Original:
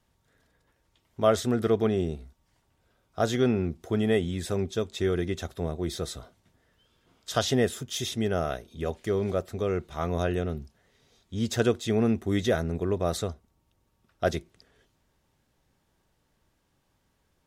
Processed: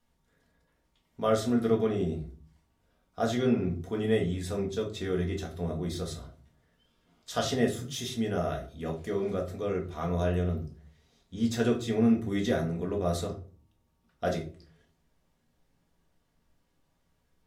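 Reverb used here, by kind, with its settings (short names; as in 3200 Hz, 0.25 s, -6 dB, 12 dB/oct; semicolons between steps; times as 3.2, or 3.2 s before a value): shoebox room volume 270 m³, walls furnished, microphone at 1.8 m; gain -6.5 dB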